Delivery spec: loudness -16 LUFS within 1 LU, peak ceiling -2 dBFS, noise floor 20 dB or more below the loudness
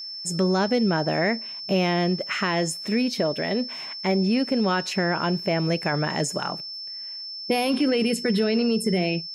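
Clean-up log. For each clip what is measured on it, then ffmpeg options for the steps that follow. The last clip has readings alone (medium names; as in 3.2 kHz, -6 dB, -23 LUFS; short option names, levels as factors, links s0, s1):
steady tone 5.3 kHz; tone level -33 dBFS; loudness -24.0 LUFS; peak level -12.0 dBFS; loudness target -16.0 LUFS
-> -af "bandreject=f=5300:w=30"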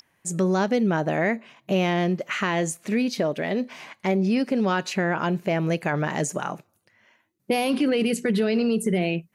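steady tone not found; loudness -24.5 LUFS; peak level -12.0 dBFS; loudness target -16.0 LUFS
-> -af "volume=2.66"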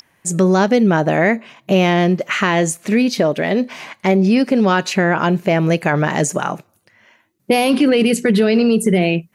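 loudness -16.0 LUFS; peak level -3.5 dBFS; noise floor -61 dBFS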